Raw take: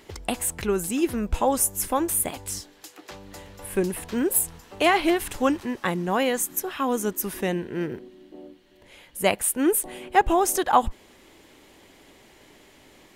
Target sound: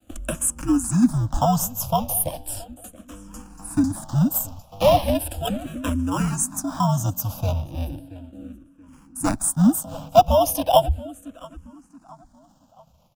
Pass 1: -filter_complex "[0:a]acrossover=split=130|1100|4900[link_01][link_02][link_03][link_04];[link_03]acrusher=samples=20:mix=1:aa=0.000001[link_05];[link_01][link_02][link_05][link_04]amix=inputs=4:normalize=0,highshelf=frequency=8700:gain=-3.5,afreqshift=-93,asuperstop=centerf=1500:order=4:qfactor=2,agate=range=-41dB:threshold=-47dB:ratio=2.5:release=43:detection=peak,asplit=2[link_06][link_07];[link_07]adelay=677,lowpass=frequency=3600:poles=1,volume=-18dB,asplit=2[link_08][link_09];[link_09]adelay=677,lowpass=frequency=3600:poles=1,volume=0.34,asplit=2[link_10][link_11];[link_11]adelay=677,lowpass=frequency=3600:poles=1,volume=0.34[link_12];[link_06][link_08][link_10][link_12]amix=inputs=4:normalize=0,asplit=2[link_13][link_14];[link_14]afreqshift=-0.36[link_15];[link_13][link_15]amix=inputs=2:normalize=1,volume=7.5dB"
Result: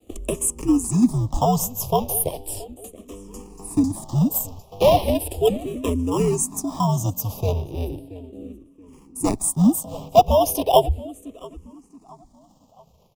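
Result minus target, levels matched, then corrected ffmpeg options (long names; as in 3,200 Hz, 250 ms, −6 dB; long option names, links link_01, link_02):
2,000 Hz band −4.5 dB
-filter_complex "[0:a]acrossover=split=130|1100|4900[link_01][link_02][link_03][link_04];[link_03]acrusher=samples=20:mix=1:aa=0.000001[link_05];[link_01][link_02][link_05][link_04]amix=inputs=4:normalize=0,highshelf=frequency=8700:gain=-3.5,afreqshift=-93,asuperstop=centerf=410:order=4:qfactor=2,agate=range=-41dB:threshold=-47dB:ratio=2.5:release=43:detection=peak,asplit=2[link_06][link_07];[link_07]adelay=677,lowpass=frequency=3600:poles=1,volume=-18dB,asplit=2[link_08][link_09];[link_09]adelay=677,lowpass=frequency=3600:poles=1,volume=0.34,asplit=2[link_10][link_11];[link_11]adelay=677,lowpass=frequency=3600:poles=1,volume=0.34[link_12];[link_06][link_08][link_10][link_12]amix=inputs=4:normalize=0,asplit=2[link_13][link_14];[link_14]afreqshift=-0.36[link_15];[link_13][link_15]amix=inputs=2:normalize=1,volume=7.5dB"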